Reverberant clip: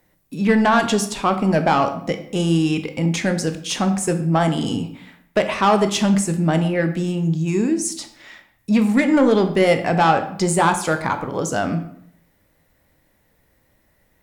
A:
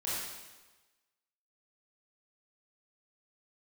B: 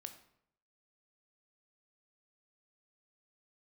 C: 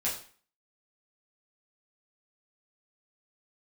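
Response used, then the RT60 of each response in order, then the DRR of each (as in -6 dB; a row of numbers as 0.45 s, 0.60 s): B; 1.2 s, 0.70 s, 0.45 s; -9.0 dB, 7.0 dB, -7.0 dB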